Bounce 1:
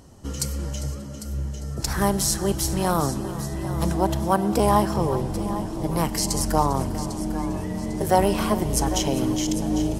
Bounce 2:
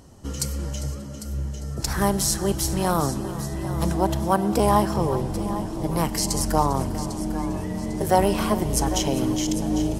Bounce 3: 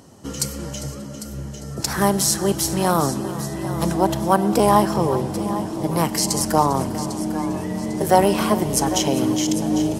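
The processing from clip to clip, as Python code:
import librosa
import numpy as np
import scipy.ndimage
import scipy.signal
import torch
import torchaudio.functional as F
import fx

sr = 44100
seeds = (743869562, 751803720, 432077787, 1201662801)

y1 = x
y2 = scipy.signal.sosfilt(scipy.signal.butter(2, 130.0, 'highpass', fs=sr, output='sos'), y1)
y2 = y2 * librosa.db_to_amplitude(4.0)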